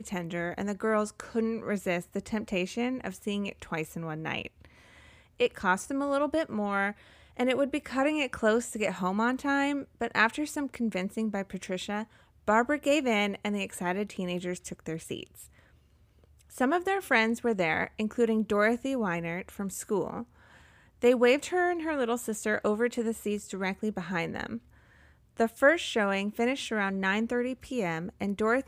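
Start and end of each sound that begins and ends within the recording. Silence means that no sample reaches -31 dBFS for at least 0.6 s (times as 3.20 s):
5.40–15.23 s
16.60–20.20 s
21.02–24.57 s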